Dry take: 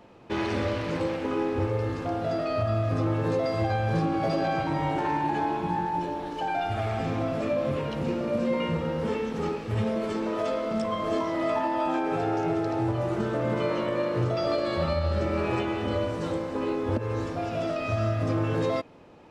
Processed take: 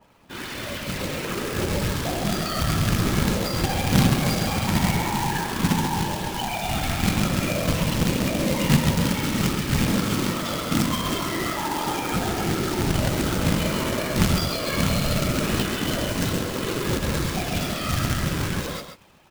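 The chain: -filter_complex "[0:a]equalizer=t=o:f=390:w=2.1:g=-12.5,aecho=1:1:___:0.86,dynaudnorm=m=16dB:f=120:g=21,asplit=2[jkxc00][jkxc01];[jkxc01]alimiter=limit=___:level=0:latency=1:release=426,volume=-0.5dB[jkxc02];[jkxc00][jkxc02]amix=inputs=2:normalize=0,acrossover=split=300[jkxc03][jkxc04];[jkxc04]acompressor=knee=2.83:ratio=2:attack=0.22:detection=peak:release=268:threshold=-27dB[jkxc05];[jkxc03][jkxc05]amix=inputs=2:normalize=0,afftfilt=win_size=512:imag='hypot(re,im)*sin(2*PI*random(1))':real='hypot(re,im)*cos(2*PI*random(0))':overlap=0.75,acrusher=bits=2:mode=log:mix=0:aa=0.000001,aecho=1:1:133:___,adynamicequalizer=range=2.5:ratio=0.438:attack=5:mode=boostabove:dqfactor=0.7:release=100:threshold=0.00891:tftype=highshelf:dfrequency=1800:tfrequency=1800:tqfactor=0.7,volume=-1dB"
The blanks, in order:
5.4, -14.5dB, 0.422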